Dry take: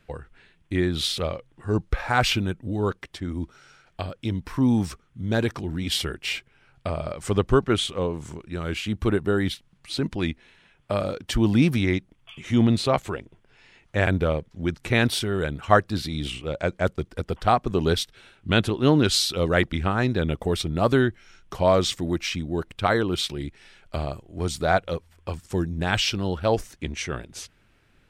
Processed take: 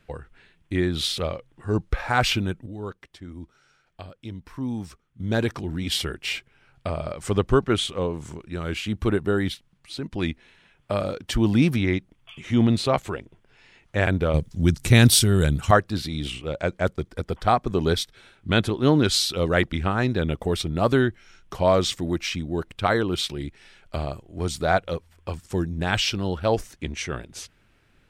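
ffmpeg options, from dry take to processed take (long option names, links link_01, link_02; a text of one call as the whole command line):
ffmpeg -i in.wav -filter_complex "[0:a]asettb=1/sr,asplit=3[link_01][link_02][link_03];[link_01]atrim=end=11.764[link_04];[link_02]atrim=start=11.76:end=12.62,asetpts=PTS-STARTPTS,afade=type=in:duration=0.004:curve=qsin,afade=type=out:start_time=0.856:duration=0.004:curve=qsin,acrossover=split=4400[link_05][link_06];[link_06]acompressor=threshold=-49dB:ratio=4:attack=1:release=60[link_07];[link_05][link_07]amix=inputs=2:normalize=0[link_08];[link_03]atrim=start=12.616[link_09];[link_04][link_08]acrossfade=duration=0.004:curve1=hsin:curve2=qsin[link_10];[link_10][link_09]acrossfade=duration=0.004:curve1=qsin:curve2=hsin,asettb=1/sr,asplit=3[link_11][link_12][link_13];[link_11]atrim=end=14.344[link_14];[link_12]atrim=start=14.34:end=15.71,asetpts=PTS-STARTPTS,afade=type=in:duration=0.004:curve=qsin,afade=type=out:start_time=1.366:duration=0.004:curve=qsin,bass=frequency=250:gain=11,treble=frequency=4000:gain=15[link_15];[link_13]atrim=start=15.706[link_16];[link_14][link_15]acrossfade=duration=0.004:curve1=hsin:curve2=qsin[link_17];[link_17][link_16]acrossfade=duration=0.004:curve1=qsin:curve2=hsin,asettb=1/sr,asplit=3[link_18][link_19][link_20];[link_18]atrim=end=16.874[link_21];[link_19]atrim=start=16.87:end=19.15,asetpts=PTS-STARTPTS,afade=type=in:duration=0.004:curve=qsin,afade=type=out:start_time=2.276:duration=0.004:curve=qsin,bandreject=frequency=2800:width=12[link_22];[link_20]atrim=start=19.146[link_23];[link_21][link_22]acrossfade=duration=0.004:curve1=hsin:curve2=qsin[link_24];[link_24][link_23]acrossfade=duration=0.004:curve1=qsin:curve2=hsin,asplit=4[link_25][link_26][link_27][link_28];[link_25]atrim=end=2.662[link_29];[link_26]atrim=start=2.658:end=5.202,asetpts=PTS-STARTPTS,volume=-9dB[link_30];[link_27]atrim=start=5.198:end=10.13,asetpts=PTS-STARTPTS,afade=type=out:start_time=4.162:duration=0.77:silence=0.398107[link_31];[link_28]atrim=start=10.13,asetpts=PTS-STARTPTS,afade=type=in:duration=0.004:curve=hsin:silence=0.398107[link_32];[link_29][link_30]acrossfade=duration=0.004:curve1=hsin:curve2=hsin[link_33];[link_31][link_32]concat=n=2:v=0:a=1[link_34];[link_33][link_34]acrossfade=duration=0.004:curve1=hsin:curve2=hsin" out.wav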